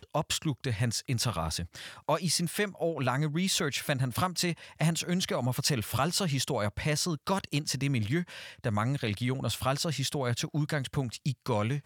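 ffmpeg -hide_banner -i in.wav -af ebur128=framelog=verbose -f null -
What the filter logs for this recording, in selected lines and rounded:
Integrated loudness:
  I:         -30.4 LUFS
  Threshold: -40.5 LUFS
Loudness range:
  LRA:         1.6 LU
  Threshold: -50.3 LUFS
  LRA low:   -31.1 LUFS
  LRA high:  -29.5 LUFS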